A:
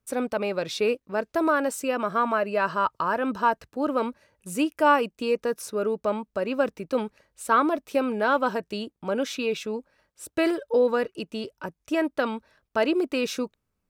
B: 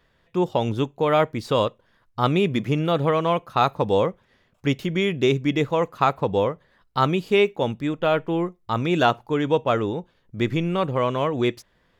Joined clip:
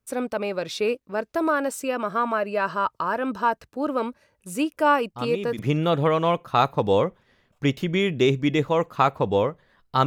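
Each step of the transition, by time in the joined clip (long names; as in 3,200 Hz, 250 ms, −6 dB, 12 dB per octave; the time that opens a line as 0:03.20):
A
0:04.73: mix in B from 0:01.75 0.86 s −11.5 dB
0:05.59: continue with B from 0:02.61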